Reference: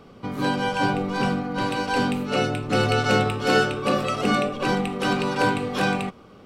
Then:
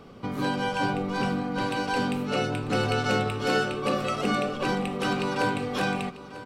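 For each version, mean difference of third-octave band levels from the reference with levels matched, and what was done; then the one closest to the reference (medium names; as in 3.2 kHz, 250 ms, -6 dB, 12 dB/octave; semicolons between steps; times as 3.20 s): 2.0 dB: compression 1.5:1, threshold -30 dBFS, peak gain reduction 6 dB; on a send: delay 944 ms -16 dB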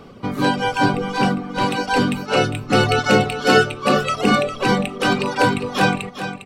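3.5 dB: reverb removal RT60 1.5 s; on a send: feedback delay 404 ms, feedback 18%, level -10 dB; on the sum: trim +6.5 dB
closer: first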